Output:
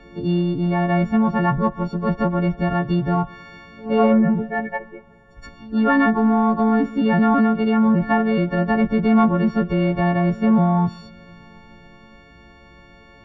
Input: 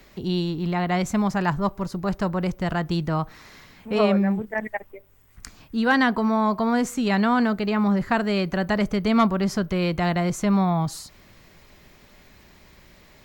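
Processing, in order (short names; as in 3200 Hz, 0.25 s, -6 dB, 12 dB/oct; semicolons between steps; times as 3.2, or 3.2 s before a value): frequency quantiser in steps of 4 st; in parallel at -6 dB: soft clip -21 dBFS, distortion -10 dB; on the sum: treble ducked by the level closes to 2500 Hz, closed at -15.5 dBFS; tape spacing loss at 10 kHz 43 dB; pre-echo 0.123 s -21 dB; on a send at -20.5 dB: reverb RT60 3.9 s, pre-delay 5 ms; on the sum: gain +3.5 dB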